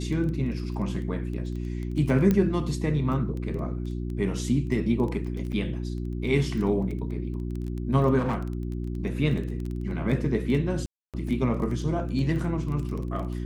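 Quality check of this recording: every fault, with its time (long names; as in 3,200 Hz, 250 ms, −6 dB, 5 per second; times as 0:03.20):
surface crackle 11 per second −31 dBFS
mains hum 60 Hz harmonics 6 −31 dBFS
0:02.31: click −12 dBFS
0:05.52–0:05.53: drop-out 6.8 ms
0:08.18–0:08.42: clipping −22.5 dBFS
0:10.86–0:11.14: drop-out 277 ms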